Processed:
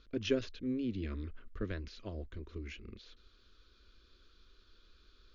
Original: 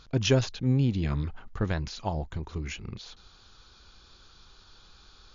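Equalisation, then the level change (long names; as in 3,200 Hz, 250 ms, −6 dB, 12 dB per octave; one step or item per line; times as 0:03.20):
low-pass filter 3,900 Hz 6 dB per octave
high-frequency loss of the air 110 metres
phaser with its sweep stopped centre 340 Hz, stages 4
−5.0 dB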